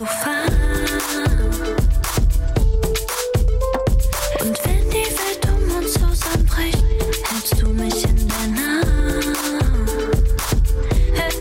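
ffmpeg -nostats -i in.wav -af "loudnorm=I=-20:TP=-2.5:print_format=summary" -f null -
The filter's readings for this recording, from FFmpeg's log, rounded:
Input Integrated:    -19.7 LUFS
Input True Peak:      -7.6 dBTP
Input LRA:             0.4 LU
Input Threshold:     -29.7 LUFS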